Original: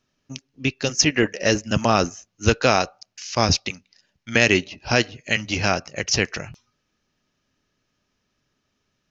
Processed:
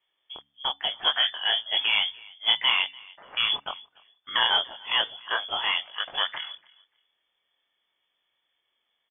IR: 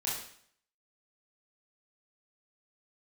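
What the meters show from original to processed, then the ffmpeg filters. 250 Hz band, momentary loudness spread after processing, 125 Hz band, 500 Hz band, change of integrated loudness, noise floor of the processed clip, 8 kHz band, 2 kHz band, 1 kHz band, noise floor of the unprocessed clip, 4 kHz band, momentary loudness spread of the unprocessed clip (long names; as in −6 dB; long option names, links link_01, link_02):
−30.0 dB, 16 LU, below −30 dB, −18.5 dB, −3.5 dB, −78 dBFS, can't be measured, −5.0 dB, −5.5 dB, −74 dBFS, +4.5 dB, 16 LU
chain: -filter_complex "[0:a]asoftclip=type=tanh:threshold=-10.5dB,flanger=delay=19:depth=7.2:speed=0.99,asplit=2[link_01][link_02];[link_02]adelay=292,lowpass=frequency=2200:poles=1,volume=-23dB,asplit=2[link_03][link_04];[link_04]adelay=292,lowpass=frequency=2200:poles=1,volume=0.23[link_05];[link_03][link_05]amix=inputs=2:normalize=0[link_06];[link_01][link_06]amix=inputs=2:normalize=0,lowpass=frequency=3000:width_type=q:width=0.5098,lowpass=frequency=3000:width_type=q:width=0.6013,lowpass=frequency=3000:width_type=q:width=0.9,lowpass=frequency=3000:width_type=q:width=2.563,afreqshift=-3500,bandreject=frequency=70.24:width_type=h:width=4,bandreject=frequency=140.48:width_type=h:width=4,bandreject=frequency=210.72:width_type=h:width=4,bandreject=frequency=280.96:width_type=h:width=4"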